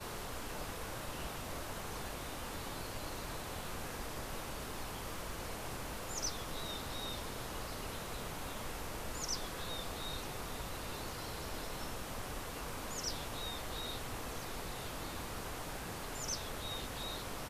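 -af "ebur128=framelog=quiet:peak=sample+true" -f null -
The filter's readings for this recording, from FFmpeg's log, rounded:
Integrated loudness:
  I:         -42.0 LUFS
  Threshold: -52.0 LUFS
Loudness range:
  LRA:         1.5 LU
  Threshold: -62.0 LUFS
  LRA low:   -43.0 LUFS
  LRA high:  -41.5 LUFS
Sample peak:
  Peak:      -25.4 dBFS
True peak:
  Peak:      -25.2 dBFS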